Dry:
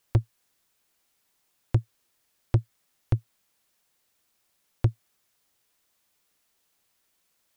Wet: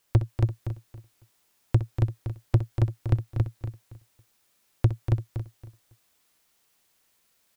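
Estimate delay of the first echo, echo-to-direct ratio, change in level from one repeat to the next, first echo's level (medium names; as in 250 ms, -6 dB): 63 ms, -1.0 dB, no regular repeats, -13.0 dB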